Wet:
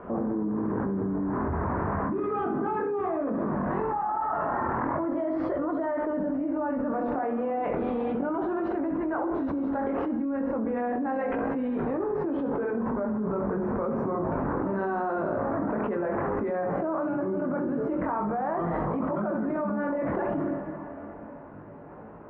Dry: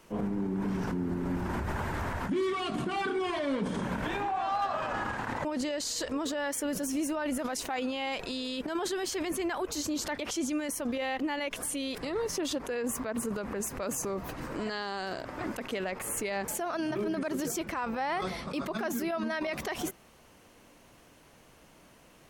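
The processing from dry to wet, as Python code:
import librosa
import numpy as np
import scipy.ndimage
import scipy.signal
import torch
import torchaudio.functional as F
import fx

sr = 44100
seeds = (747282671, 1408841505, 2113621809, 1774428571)

y = fx.doppler_pass(x, sr, speed_mps=30, closest_m=17.0, pass_at_s=6.41)
y = scipy.signal.sosfilt(scipy.signal.butter(4, 1400.0, 'lowpass', fs=sr, output='sos'), y)
y = fx.tilt_eq(y, sr, slope=-2.0)
y = fx.room_flutter(y, sr, wall_m=11.3, rt60_s=0.48)
y = fx.rev_plate(y, sr, seeds[0], rt60_s=4.0, hf_ratio=0.85, predelay_ms=0, drr_db=12.0)
y = fx.chorus_voices(y, sr, voices=2, hz=0.34, base_ms=22, depth_ms=3.9, mix_pct=40)
y = fx.highpass(y, sr, hz=240.0, slope=6)
y = fx.hum_notches(y, sr, base_hz=60, count=9)
y = fx.env_flatten(y, sr, amount_pct=100)
y = F.gain(torch.from_numpy(y), 3.0).numpy()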